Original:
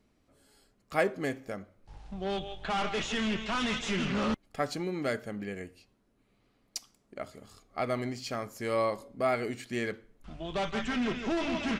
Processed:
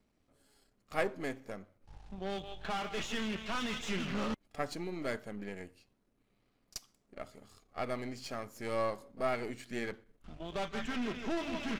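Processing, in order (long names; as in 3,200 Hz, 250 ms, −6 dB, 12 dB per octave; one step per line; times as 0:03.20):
gain on one half-wave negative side −7 dB
echo ahead of the sound 34 ms −20 dB
level −3 dB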